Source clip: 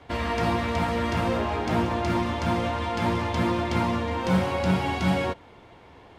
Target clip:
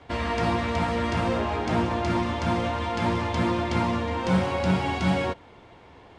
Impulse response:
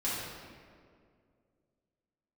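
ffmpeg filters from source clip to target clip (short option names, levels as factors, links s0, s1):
-af "lowpass=f=9500:w=0.5412,lowpass=f=9500:w=1.3066"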